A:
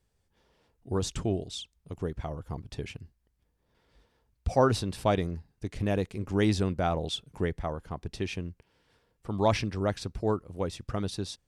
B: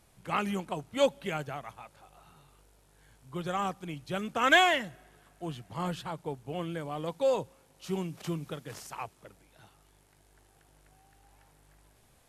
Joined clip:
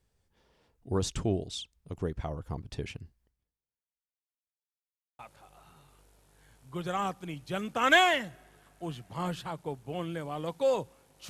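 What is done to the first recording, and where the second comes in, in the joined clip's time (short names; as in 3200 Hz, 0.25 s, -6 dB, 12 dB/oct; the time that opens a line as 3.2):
A
3.25–4.68 fade out exponential
4.68–5.19 mute
5.19 switch to B from 1.79 s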